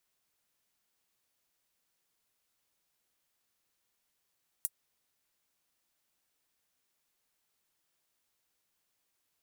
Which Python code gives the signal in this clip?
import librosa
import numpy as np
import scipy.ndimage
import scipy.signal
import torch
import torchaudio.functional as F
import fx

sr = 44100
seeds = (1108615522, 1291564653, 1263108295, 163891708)

y = fx.drum_hat(sr, length_s=0.24, from_hz=9100.0, decay_s=0.05)